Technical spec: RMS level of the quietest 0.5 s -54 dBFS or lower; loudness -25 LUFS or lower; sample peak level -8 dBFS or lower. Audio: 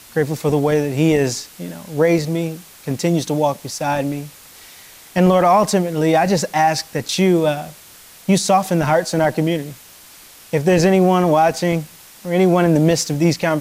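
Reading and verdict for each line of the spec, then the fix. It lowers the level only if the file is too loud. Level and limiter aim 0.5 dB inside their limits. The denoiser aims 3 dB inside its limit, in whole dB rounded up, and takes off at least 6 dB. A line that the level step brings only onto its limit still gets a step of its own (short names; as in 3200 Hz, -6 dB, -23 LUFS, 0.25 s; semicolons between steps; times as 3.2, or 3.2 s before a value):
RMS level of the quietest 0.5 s -43 dBFS: fail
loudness -17.5 LUFS: fail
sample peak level -5.5 dBFS: fail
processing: denoiser 6 dB, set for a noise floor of -43 dBFS; gain -8 dB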